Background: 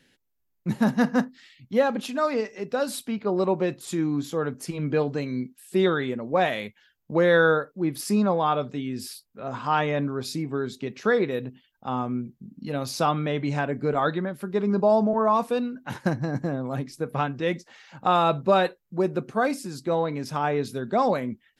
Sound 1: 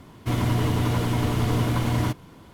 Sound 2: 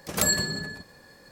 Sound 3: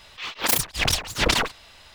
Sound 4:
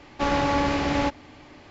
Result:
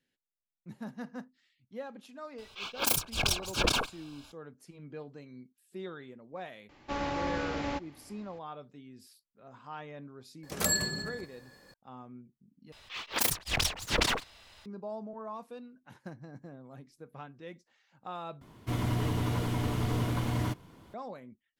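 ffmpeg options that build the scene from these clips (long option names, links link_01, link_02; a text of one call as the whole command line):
ffmpeg -i bed.wav -i cue0.wav -i cue1.wav -i cue2.wav -i cue3.wav -filter_complex "[3:a]asplit=2[link_01][link_02];[0:a]volume=-20dB[link_03];[link_01]asuperstop=centerf=1900:order=12:qfactor=4.1[link_04];[link_03]asplit=3[link_05][link_06][link_07];[link_05]atrim=end=12.724[link_08];[link_02]atrim=end=1.94,asetpts=PTS-STARTPTS,volume=-7dB[link_09];[link_06]atrim=start=14.656:end=18.414[link_10];[1:a]atrim=end=2.53,asetpts=PTS-STARTPTS,volume=-7.5dB[link_11];[link_07]atrim=start=20.936[link_12];[link_04]atrim=end=1.94,asetpts=PTS-STARTPTS,volume=-6.5dB,afade=type=in:duration=0.004:curve=hsin,afade=type=out:start_time=1.936:duration=0.004:curve=hsin,adelay=2380[link_13];[4:a]atrim=end=1.7,asetpts=PTS-STARTPTS,volume=-10.5dB,afade=type=in:duration=0.004:curve=hsin,afade=type=out:start_time=1.696:duration=0.004:curve=hsin,adelay=6690[link_14];[2:a]atrim=end=1.31,asetpts=PTS-STARTPTS,volume=-5dB,afade=type=in:duration=0.004:curve=hsin,afade=type=out:start_time=1.306:duration=0.004:curve=hsin,adelay=10430[link_15];[link_08][link_09]acrossfade=duration=0.004:curve1=hsin:curve2=hsin[link_16];[link_16][link_10]acrossfade=duration=0.004:curve1=hsin:curve2=hsin[link_17];[link_17][link_11]acrossfade=duration=0.004:curve1=hsin:curve2=hsin[link_18];[link_18][link_12]acrossfade=duration=0.004:curve1=hsin:curve2=hsin[link_19];[link_19][link_13][link_14][link_15]amix=inputs=4:normalize=0" out.wav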